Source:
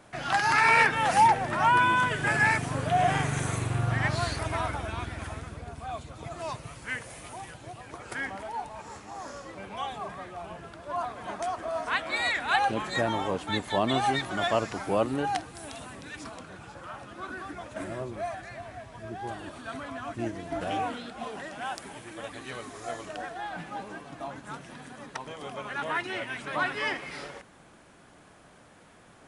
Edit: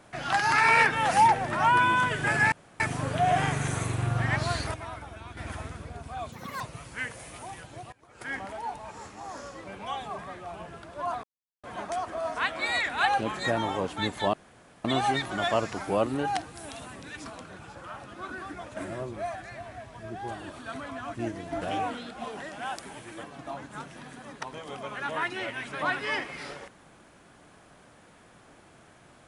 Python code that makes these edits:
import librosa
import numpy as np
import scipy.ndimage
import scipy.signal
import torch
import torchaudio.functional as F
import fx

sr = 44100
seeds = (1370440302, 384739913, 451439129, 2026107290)

y = fx.edit(x, sr, fx.insert_room_tone(at_s=2.52, length_s=0.28),
    fx.clip_gain(start_s=4.46, length_s=0.63, db=-9.0),
    fx.speed_span(start_s=6.04, length_s=0.47, speed=1.65),
    fx.fade_in_from(start_s=7.83, length_s=0.42, curve='qua', floor_db=-20.5),
    fx.insert_silence(at_s=11.14, length_s=0.4),
    fx.insert_room_tone(at_s=13.84, length_s=0.51),
    fx.cut(start_s=22.23, length_s=1.74), tone=tone)